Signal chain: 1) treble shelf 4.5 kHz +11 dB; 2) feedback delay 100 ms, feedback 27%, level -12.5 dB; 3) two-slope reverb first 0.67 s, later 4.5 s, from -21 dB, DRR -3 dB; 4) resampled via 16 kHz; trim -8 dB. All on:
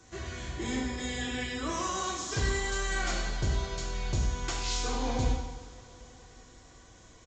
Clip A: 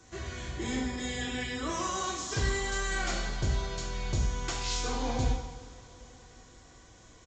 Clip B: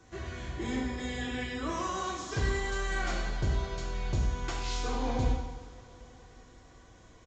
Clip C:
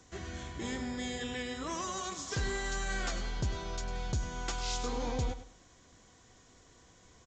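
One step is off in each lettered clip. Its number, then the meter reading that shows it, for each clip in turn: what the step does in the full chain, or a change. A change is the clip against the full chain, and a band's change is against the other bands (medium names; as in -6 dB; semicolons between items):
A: 2, momentary loudness spread change +1 LU; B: 1, 8 kHz band -7.5 dB; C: 3, momentary loudness spread change -7 LU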